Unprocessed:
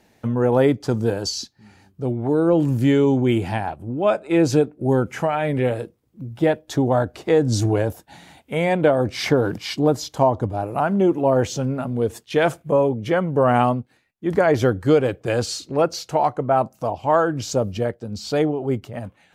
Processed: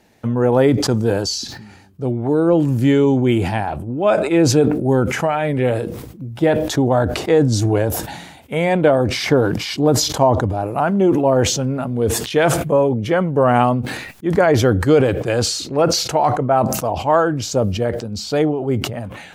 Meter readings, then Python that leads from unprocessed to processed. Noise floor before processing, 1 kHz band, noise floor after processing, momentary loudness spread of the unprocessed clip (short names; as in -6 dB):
-60 dBFS, +3.0 dB, -39 dBFS, 9 LU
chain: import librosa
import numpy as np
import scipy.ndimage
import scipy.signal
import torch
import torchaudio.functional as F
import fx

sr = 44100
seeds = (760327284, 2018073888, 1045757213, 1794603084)

y = fx.sustainer(x, sr, db_per_s=50.0)
y = y * 10.0 ** (2.5 / 20.0)